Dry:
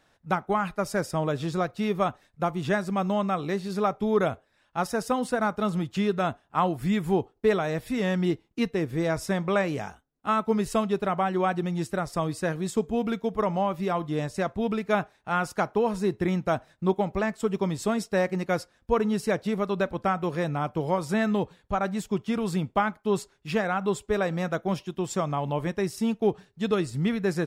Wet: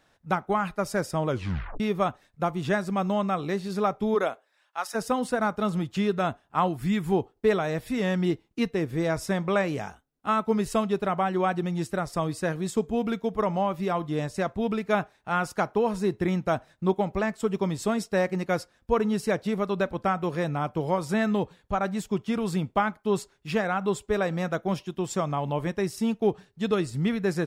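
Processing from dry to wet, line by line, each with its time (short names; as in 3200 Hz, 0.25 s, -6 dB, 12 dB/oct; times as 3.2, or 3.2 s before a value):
1.28 tape stop 0.52 s
4.14–4.94 HPF 320 Hz -> 1100 Hz
6.68–7.12 bell 550 Hz -6.5 dB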